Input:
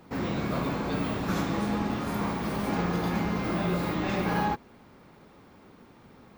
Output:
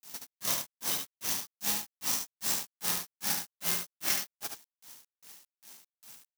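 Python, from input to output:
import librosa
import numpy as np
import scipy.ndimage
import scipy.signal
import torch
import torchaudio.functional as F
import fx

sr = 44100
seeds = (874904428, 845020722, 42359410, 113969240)

p1 = fx.formant_shift(x, sr, semitones=-3)
p2 = fx.peak_eq(p1, sr, hz=5900.0, db=14.5, octaves=0.64)
p3 = fx.rider(p2, sr, range_db=10, speed_s=0.5)
p4 = p2 + (p3 * 10.0 ** (3.0 / 20.0))
p5 = fx.granulator(p4, sr, seeds[0], grain_ms=202.0, per_s=2.5, spray_ms=100.0, spread_st=0)
p6 = fx.quant_companded(p5, sr, bits=4)
p7 = librosa.effects.preemphasis(p6, coef=0.97, zi=[0.0])
p8 = p7 + fx.echo_single(p7, sr, ms=73, db=-5.5, dry=0)
y = p8 * 10.0 ** (4.5 / 20.0)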